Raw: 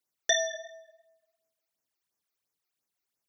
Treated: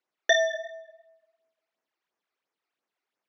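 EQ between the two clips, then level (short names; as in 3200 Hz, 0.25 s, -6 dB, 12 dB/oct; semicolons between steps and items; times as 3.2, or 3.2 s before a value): BPF 280–2700 Hz; +7.0 dB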